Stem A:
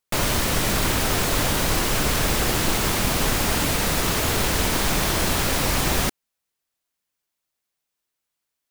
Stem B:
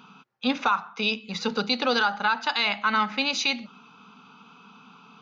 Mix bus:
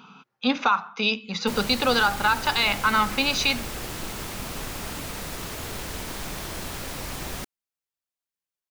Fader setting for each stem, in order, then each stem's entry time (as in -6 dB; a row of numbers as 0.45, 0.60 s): -12.0, +2.0 dB; 1.35, 0.00 s